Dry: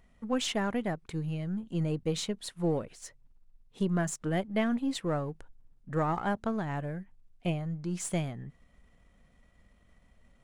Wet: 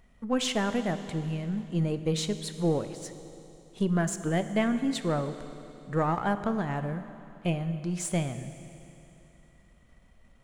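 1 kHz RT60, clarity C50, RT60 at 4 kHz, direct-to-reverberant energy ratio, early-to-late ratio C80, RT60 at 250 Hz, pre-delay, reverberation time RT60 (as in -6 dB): 3.0 s, 10.5 dB, 3.0 s, 9.5 dB, 11.0 dB, 3.0 s, 20 ms, 3.0 s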